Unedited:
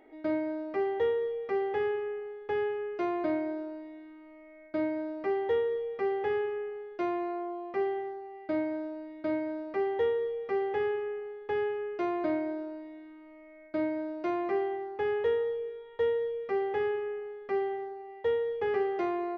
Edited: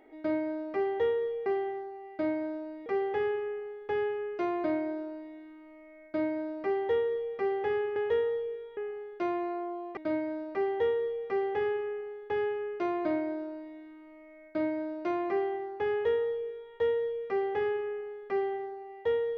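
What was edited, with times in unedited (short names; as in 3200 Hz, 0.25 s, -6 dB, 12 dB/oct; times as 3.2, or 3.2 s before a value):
7.76–9.16 move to 1.46
15.1–15.91 copy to 6.56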